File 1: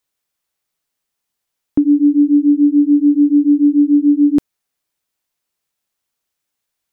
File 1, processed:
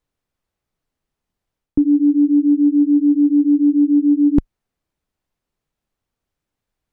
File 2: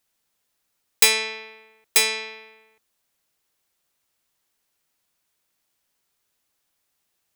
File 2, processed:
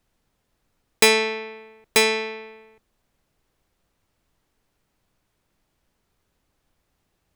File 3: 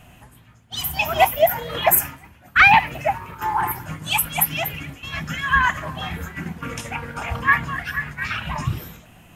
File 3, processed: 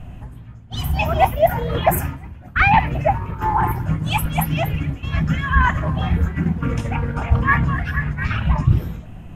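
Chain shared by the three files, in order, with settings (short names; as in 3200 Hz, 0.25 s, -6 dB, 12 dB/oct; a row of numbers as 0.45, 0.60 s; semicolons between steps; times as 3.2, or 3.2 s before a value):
tilt -3.5 dB/oct; reverse; compressor 6:1, threshold -12 dBFS; reverse; normalise peaks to -2 dBFS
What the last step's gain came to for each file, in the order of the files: 0.0, +6.5, +2.5 dB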